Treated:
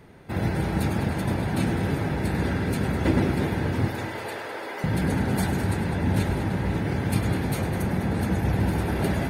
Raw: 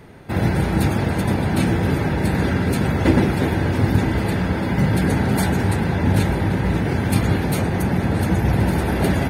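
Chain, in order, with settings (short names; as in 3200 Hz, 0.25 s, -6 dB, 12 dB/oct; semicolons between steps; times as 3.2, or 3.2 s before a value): 3.88–4.84 HPF 410 Hz 24 dB/oct; multi-head echo 0.102 s, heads first and second, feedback 46%, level -13 dB; gain -6.5 dB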